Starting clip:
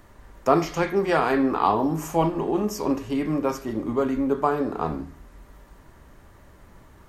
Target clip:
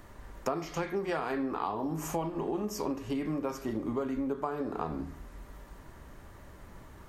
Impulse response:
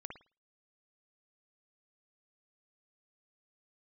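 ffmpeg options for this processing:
-af "acompressor=threshold=0.0316:ratio=6"

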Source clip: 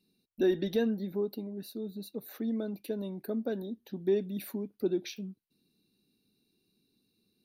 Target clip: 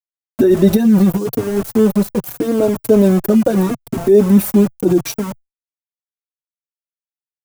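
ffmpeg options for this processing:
-filter_complex "[0:a]equalizer=f=3100:t=o:w=0.48:g=-6,aeval=exprs='val(0)*gte(abs(val(0)),0.0075)':c=same,equalizer=f=125:t=o:w=1:g=9,equalizer=f=250:t=o:w=1:g=-5,equalizer=f=2000:t=o:w=1:g=-6,equalizer=f=4000:t=o:w=1:g=-9,alimiter=level_in=26.6:limit=0.891:release=50:level=0:latency=1,asplit=2[s0][s1];[s1]adelay=3.8,afreqshift=-0.81[s2];[s0][s2]amix=inputs=2:normalize=1"

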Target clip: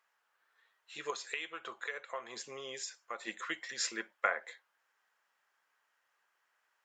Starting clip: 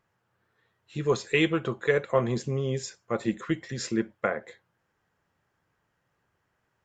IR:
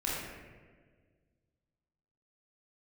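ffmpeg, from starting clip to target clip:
-filter_complex "[0:a]highpass=1000,asettb=1/sr,asplit=3[s0][s1][s2];[s0]atrim=end=1.104[s3];[s1]atrim=start=1.1:end=3.27,asetpts=PTS-STARTPTS,afade=t=in:d=0.004:c=qsin,afade=t=out:st=2.166:d=0.004:c=qsin,acompressor=threshold=0.01:ratio=4[s4];[s2]atrim=start=3.266[s5];[s3][s4]acrossfade=d=0.004:c1=hsin:c2=qsin[s6];[s6][s5]acrossfade=d=0.004:c1=qsin:c2=hsin,volume=1.12"

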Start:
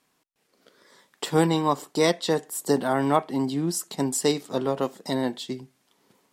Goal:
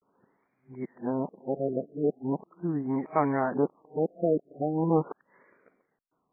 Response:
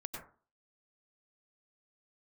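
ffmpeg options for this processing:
-af "areverse,afftfilt=real='re*lt(b*sr/1024,690*pow(2500/690,0.5+0.5*sin(2*PI*0.4*pts/sr)))':imag='im*lt(b*sr/1024,690*pow(2500/690,0.5+0.5*sin(2*PI*0.4*pts/sr)))':win_size=1024:overlap=0.75,volume=0.668"

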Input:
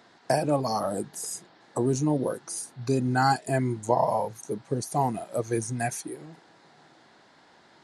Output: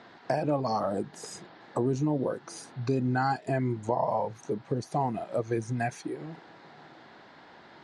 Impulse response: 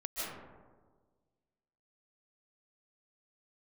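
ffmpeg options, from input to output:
-filter_complex "[0:a]asplit=2[s0][s1];[s1]alimiter=limit=0.133:level=0:latency=1:release=157,volume=1.33[s2];[s0][s2]amix=inputs=2:normalize=0,lowpass=3600,acompressor=threshold=0.02:ratio=1.5,volume=0.794"

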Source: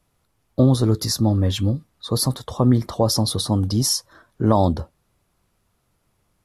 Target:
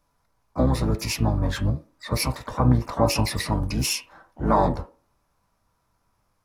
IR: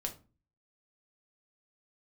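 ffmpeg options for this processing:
-filter_complex "[0:a]asplit=4[s0][s1][s2][s3];[s1]asetrate=22050,aresample=44100,atempo=2,volume=0.891[s4];[s2]asetrate=55563,aresample=44100,atempo=0.793701,volume=0.316[s5];[s3]asetrate=88200,aresample=44100,atempo=0.5,volume=0.126[s6];[s0][s4][s5][s6]amix=inputs=4:normalize=0,asplit=2[s7][s8];[s8]highpass=f=420:w=0.5412,highpass=f=420:w=1.3066,equalizer=f=440:t=q:w=4:g=-3,equalizer=f=650:t=q:w=4:g=-5,equalizer=f=970:t=q:w=4:g=6,equalizer=f=2100:t=q:w=4:g=-8,lowpass=f=2700:w=0.5412,lowpass=f=2700:w=1.3066[s9];[1:a]atrim=start_sample=2205[s10];[s9][s10]afir=irnorm=-1:irlink=0,volume=1.19[s11];[s7][s11]amix=inputs=2:normalize=0,volume=0.473"

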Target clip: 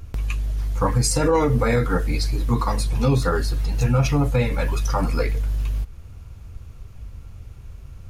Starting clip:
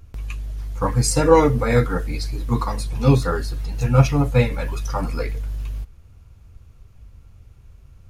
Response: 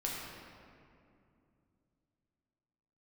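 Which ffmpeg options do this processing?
-filter_complex "[0:a]asplit=2[s0][s1];[s1]acompressor=threshold=0.0282:ratio=6,volume=1.33[s2];[s0][s2]amix=inputs=2:normalize=0,alimiter=limit=0.316:level=0:latency=1:release=55"

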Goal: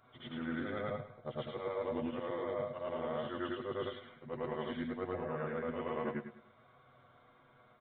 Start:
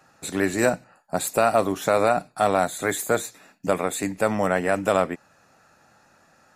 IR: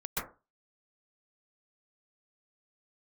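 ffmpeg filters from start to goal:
-filter_complex "[0:a]afftfilt=real='re':imag='-im':win_size=8192:overlap=0.75,aecho=1:1:6.8:0.7,areverse,acompressor=threshold=0.0282:ratio=20,areverse,asetrate=37044,aresample=44100,asplit=2[s0][s1];[s1]aecho=0:1:102|204|306:0.251|0.0854|0.029[s2];[s0][s2]amix=inputs=2:normalize=0,aresample=8000,aresample=44100,volume=0.708"

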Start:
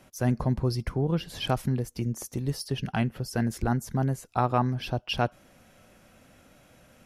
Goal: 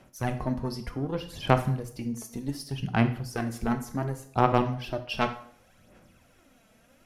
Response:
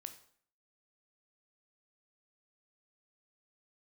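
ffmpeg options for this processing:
-filter_complex "[0:a]aeval=exprs='0.335*(cos(1*acos(clip(val(0)/0.335,-1,1)))-cos(1*PI/2))+0.0668*(cos(3*acos(clip(val(0)/0.335,-1,1)))-cos(3*PI/2))':c=same,aphaser=in_gain=1:out_gain=1:delay=4.6:decay=0.56:speed=0.67:type=sinusoidal[s0];[1:a]atrim=start_sample=2205[s1];[s0][s1]afir=irnorm=-1:irlink=0,volume=2.37"

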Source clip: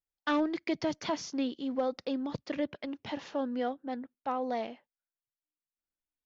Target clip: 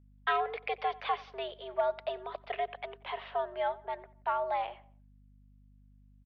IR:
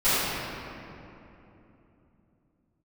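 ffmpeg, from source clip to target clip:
-filter_complex "[0:a]highpass=f=420:t=q:w=0.5412,highpass=f=420:t=q:w=1.307,lowpass=f=3300:t=q:w=0.5176,lowpass=f=3300:t=q:w=0.7071,lowpass=f=3300:t=q:w=1.932,afreqshift=120,asplit=2[s0][s1];[s1]adelay=90,lowpass=f=2600:p=1,volume=0.0944,asplit=2[s2][s3];[s3]adelay=90,lowpass=f=2600:p=1,volume=0.43,asplit=2[s4][s5];[s5]adelay=90,lowpass=f=2600:p=1,volume=0.43[s6];[s0][s2][s4][s6]amix=inputs=4:normalize=0,aeval=exprs='val(0)+0.000891*(sin(2*PI*50*n/s)+sin(2*PI*2*50*n/s)/2+sin(2*PI*3*50*n/s)/3+sin(2*PI*4*50*n/s)/4+sin(2*PI*5*50*n/s)/5)':c=same,volume=1.33"

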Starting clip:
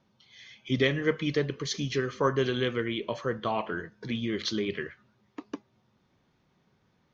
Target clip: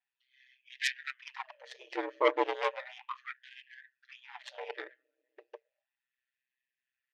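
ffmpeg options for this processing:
-filter_complex "[0:a]highpass=180,equalizer=f=530:t=o:w=0.45:g=-3,aecho=1:1:5.5:0.96,asplit=2[s0][s1];[s1]adynamicsmooth=sensitivity=3.5:basefreq=560,volume=0.891[s2];[s0][s2]amix=inputs=2:normalize=0,asplit=3[s3][s4][s5];[s3]bandpass=f=530:t=q:w=8,volume=1[s6];[s4]bandpass=f=1840:t=q:w=8,volume=0.501[s7];[s5]bandpass=f=2480:t=q:w=8,volume=0.355[s8];[s6][s7][s8]amix=inputs=3:normalize=0,aeval=exprs='0.224*(cos(1*acos(clip(val(0)/0.224,-1,1)))-cos(1*PI/2))+0.0891*(cos(6*acos(clip(val(0)/0.224,-1,1)))-cos(6*PI/2))':c=same,aeval=exprs='val(0)*sin(2*PI*64*n/s)':c=same,afftfilt=real='re*gte(b*sr/1024,270*pow(1600/270,0.5+0.5*sin(2*PI*0.34*pts/sr)))':imag='im*gte(b*sr/1024,270*pow(1600/270,0.5+0.5*sin(2*PI*0.34*pts/sr)))':win_size=1024:overlap=0.75"

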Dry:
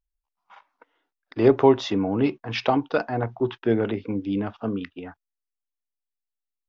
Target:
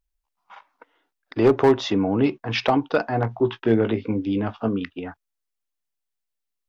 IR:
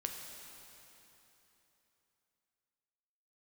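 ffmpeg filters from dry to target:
-filter_complex "[0:a]asplit=2[s0][s1];[s1]acompressor=threshold=0.0447:ratio=6,volume=0.708[s2];[s0][s2]amix=inputs=2:normalize=0,volume=2.99,asoftclip=hard,volume=0.335,asettb=1/sr,asplit=3[s3][s4][s5];[s3]atrim=end=3.074[s6];[s4]atrim=start=3.07:end=4.68,asetpts=PTS-STARTPTS,afade=t=in:d=0.004:c=qsin,afade=t=out:st=1.606:d=0.004:c=qsin,asplit=2[s7][s8];[s8]adelay=18,volume=0.316[s9];[s7][s9]amix=inputs=2:normalize=0,atrim=end_sample=71001[s10];[s5]atrim=start=4.676[s11];[s6][s10]acrossfade=d=0.004:c1=hsin:c2=qsin[s12];[s12][s11]acrossfade=d=0.004:c1=qsin:c2=hsin"

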